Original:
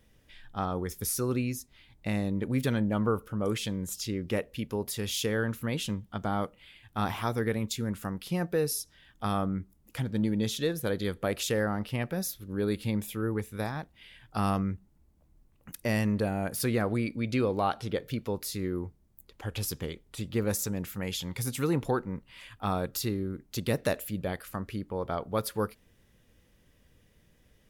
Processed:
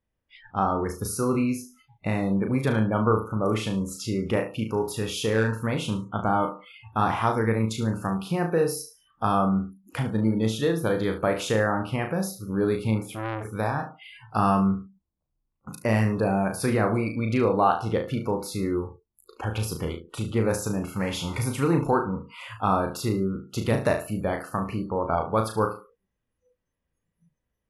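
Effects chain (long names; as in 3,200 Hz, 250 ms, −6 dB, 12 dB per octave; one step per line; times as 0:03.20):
0:20.96–0:21.52: converter with a step at zero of −39.5 dBFS
in parallel at +2 dB: downward compressor 6 to 1, threshold −42 dBFS, peak gain reduction 18 dB
on the sum: graphic EQ with 10 bands 1,000 Hz +6 dB, 4,000 Hz −4 dB, 8,000 Hz −7 dB
0:04.54–0:05.49: gain into a clipping stage and back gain 21 dB
Chebyshev low-pass filter 11,000 Hz, order 5
on a send: flutter between parallel walls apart 6.2 metres, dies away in 0.39 s
on the sum: noise reduction from a noise print of the clip's start 29 dB
0:13.03–0:13.45: saturating transformer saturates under 1,400 Hz
level +2 dB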